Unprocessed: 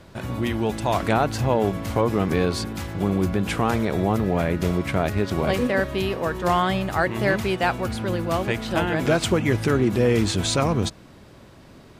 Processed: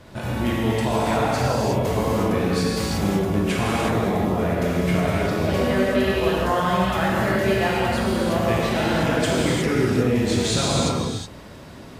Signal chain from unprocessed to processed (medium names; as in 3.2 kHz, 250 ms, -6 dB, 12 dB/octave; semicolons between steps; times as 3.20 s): compression, threshold -24 dBFS, peak gain reduction 9 dB; gated-style reverb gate 390 ms flat, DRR -6.5 dB